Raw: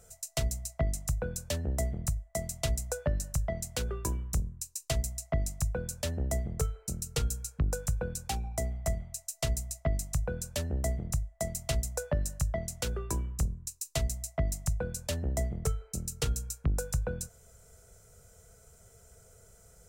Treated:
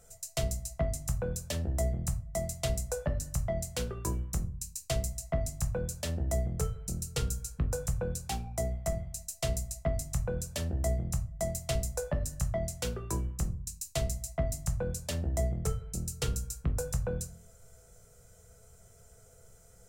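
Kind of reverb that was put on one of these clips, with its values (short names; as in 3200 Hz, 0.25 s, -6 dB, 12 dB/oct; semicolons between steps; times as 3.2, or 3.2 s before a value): shoebox room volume 190 m³, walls furnished, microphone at 0.83 m; gain -2 dB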